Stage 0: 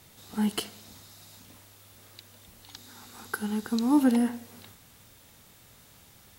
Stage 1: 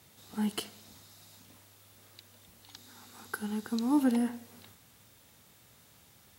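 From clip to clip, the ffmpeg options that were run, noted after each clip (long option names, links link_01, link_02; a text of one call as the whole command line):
ffmpeg -i in.wav -af "highpass=65,volume=-4.5dB" out.wav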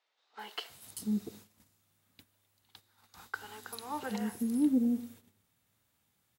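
ffmpeg -i in.wav -filter_complex "[0:a]acrossover=split=490|5100[link_01][link_02][link_03];[link_03]adelay=390[link_04];[link_01]adelay=690[link_05];[link_05][link_02][link_04]amix=inputs=3:normalize=0,agate=range=-15dB:threshold=-53dB:ratio=16:detection=peak" out.wav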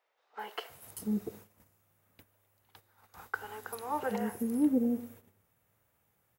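ffmpeg -i in.wav -af "equalizer=frequency=250:width_type=o:width=1:gain=-6,equalizer=frequency=500:width_type=o:width=1:gain=5,equalizer=frequency=4000:width_type=o:width=1:gain=-11,equalizer=frequency=8000:width_type=o:width=1:gain=-6,volume=4dB" out.wav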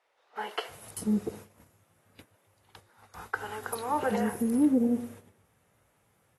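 ffmpeg -i in.wav -filter_complex "[0:a]asplit=2[link_01][link_02];[link_02]alimiter=level_in=1.5dB:limit=-24dB:level=0:latency=1:release=55,volume=-1.5dB,volume=-1dB[link_03];[link_01][link_03]amix=inputs=2:normalize=0" -ar 32000 -c:a aac -b:a 32k out.aac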